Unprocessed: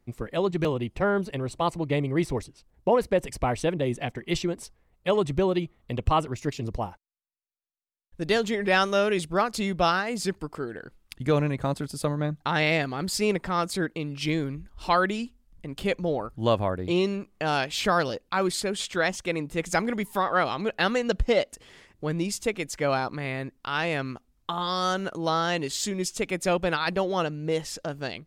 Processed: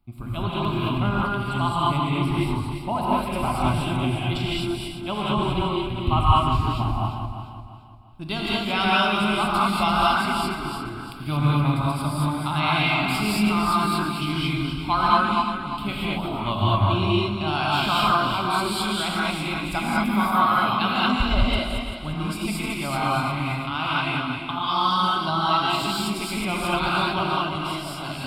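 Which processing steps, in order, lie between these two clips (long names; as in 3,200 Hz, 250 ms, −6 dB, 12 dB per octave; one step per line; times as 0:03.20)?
feedback delay that plays each chunk backwards 173 ms, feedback 61%, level −6 dB
phaser with its sweep stopped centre 1,800 Hz, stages 6
reverb whose tail is shaped and stops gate 250 ms rising, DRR −6 dB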